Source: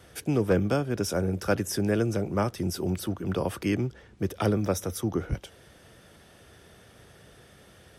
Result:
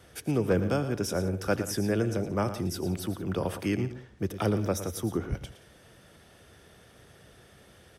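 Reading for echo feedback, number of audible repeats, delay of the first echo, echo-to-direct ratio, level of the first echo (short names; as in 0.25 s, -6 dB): no steady repeat, 3, 84 ms, -11.0 dB, -20.0 dB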